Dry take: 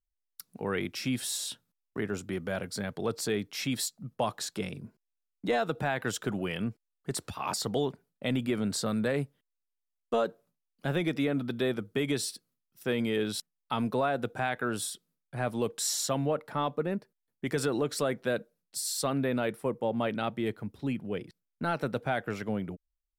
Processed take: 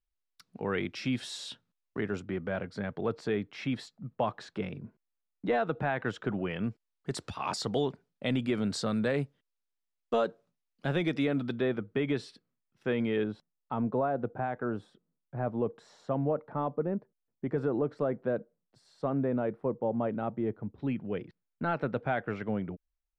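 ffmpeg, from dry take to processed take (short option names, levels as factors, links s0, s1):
-af "asetnsamples=n=441:p=0,asendcmd='2.2 lowpass f 2300;6.64 lowpass f 5800;11.56 lowpass f 2400;13.24 lowpass f 1000;20.78 lowpass f 2400',lowpass=4100"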